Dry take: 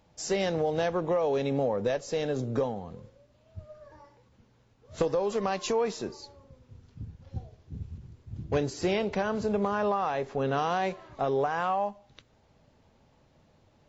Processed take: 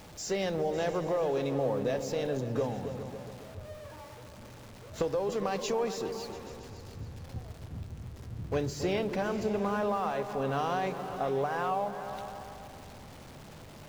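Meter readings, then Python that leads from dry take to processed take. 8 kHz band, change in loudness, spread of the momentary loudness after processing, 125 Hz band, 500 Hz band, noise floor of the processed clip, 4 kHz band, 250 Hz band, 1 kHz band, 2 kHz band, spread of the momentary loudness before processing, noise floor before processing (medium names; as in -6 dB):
no reading, -3.0 dB, 18 LU, -1.0 dB, -2.5 dB, -49 dBFS, -2.0 dB, -2.0 dB, -2.5 dB, -2.5 dB, 18 LU, -64 dBFS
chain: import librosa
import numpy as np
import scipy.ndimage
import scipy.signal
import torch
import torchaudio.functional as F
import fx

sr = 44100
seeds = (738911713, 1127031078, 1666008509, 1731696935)

y = x + 0.5 * 10.0 ** (-41.0 / 20.0) * np.sign(x)
y = fx.echo_opening(y, sr, ms=138, hz=200, octaves=2, feedback_pct=70, wet_db=-6)
y = F.gain(torch.from_numpy(y), -4.0).numpy()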